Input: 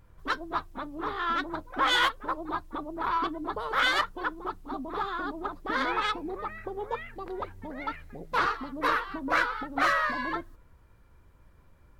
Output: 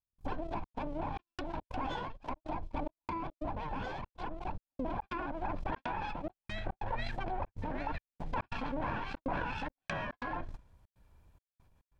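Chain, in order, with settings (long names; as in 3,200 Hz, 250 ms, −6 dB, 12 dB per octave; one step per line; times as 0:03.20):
lower of the sound and its delayed copy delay 1.2 ms
gate pattern "xxxxxx.xxxx..xx." 141 BPM −60 dB
downward compressor 16 to 1, threshold −40 dBFS, peak gain reduction 18.5 dB
noise gate −47 dBFS, range −52 dB
treble cut that deepens with the level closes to 1,300 Hz, closed at −39.5 dBFS
parametric band 1,600 Hz −13 dB 0.98 octaves, from 0:04.97 −6 dB
level that may fall only so fast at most 21 dB per second
level +8.5 dB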